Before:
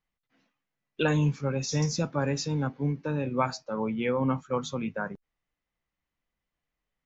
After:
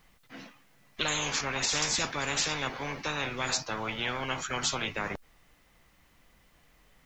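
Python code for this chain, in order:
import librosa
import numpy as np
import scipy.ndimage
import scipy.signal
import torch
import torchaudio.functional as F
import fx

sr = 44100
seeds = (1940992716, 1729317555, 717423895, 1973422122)

y = fx.spectral_comp(x, sr, ratio=10.0)
y = y * 10.0 ** (-2.5 / 20.0)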